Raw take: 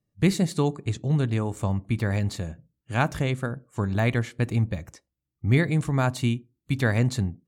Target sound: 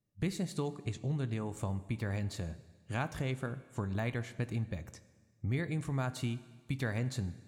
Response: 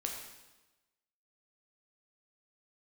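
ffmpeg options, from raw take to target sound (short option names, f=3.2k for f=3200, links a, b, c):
-filter_complex "[0:a]acompressor=threshold=-30dB:ratio=2.5,asplit=2[a][b];[1:a]atrim=start_sample=2205,asetrate=30429,aresample=44100,adelay=23[c];[b][c]afir=irnorm=-1:irlink=0,volume=-16.5dB[d];[a][d]amix=inputs=2:normalize=0,volume=-4.5dB"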